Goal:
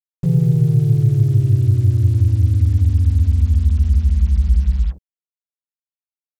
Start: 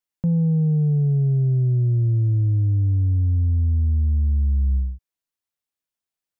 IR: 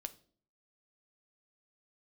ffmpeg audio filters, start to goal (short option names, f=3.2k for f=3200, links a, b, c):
-filter_complex "[0:a]asplit=4[a][b][c][d];[b]asetrate=33038,aresample=44100,atempo=1.33484,volume=-3dB[e];[c]asetrate=35002,aresample=44100,atempo=1.25992,volume=-7dB[f];[d]asetrate=37084,aresample=44100,atempo=1.18921,volume=-2dB[g];[a][e][f][g]amix=inputs=4:normalize=0,acrusher=bits=6:mix=0:aa=0.5,volume=1dB"